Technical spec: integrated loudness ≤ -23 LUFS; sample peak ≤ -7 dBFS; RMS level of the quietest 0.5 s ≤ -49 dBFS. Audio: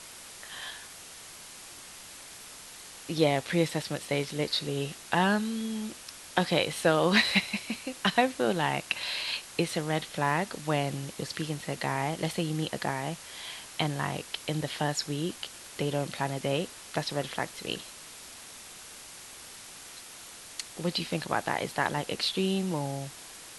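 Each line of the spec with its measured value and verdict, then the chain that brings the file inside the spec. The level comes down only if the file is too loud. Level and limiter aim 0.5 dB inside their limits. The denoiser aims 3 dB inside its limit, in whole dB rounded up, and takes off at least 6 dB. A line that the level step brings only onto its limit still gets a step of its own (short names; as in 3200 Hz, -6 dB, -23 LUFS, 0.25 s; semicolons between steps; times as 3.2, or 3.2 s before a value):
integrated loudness -30.5 LUFS: OK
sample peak -8.5 dBFS: OK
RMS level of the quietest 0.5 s -47 dBFS: fail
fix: denoiser 6 dB, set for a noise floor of -47 dBFS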